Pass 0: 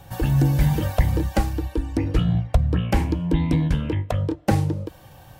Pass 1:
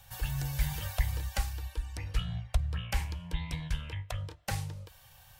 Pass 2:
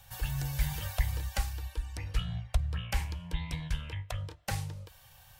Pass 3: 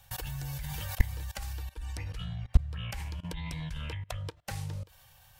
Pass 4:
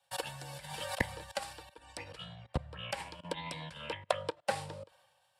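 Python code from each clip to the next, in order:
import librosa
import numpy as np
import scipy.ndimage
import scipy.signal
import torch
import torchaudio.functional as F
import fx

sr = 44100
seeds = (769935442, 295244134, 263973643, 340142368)

y1 = fx.tone_stack(x, sr, knobs='10-0-10')
y1 = F.gain(torch.from_numpy(y1), -2.0).numpy()
y2 = y1
y3 = fx.level_steps(y2, sr, step_db=22)
y3 = F.gain(torch.from_numpy(y3), 7.5).numpy()
y4 = fx.cabinet(y3, sr, low_hz=270.0, low_slope=12, high_hz=9800.0, hz=(560.0, 940.0, 2100.0, 6300.0), db=(9, 4, -3, -10))
y4 = fx.band_widen(y4, sr, depth_pct=70)
y4 = F.gain(torch.from_numpy(y4), 3.5).numpy()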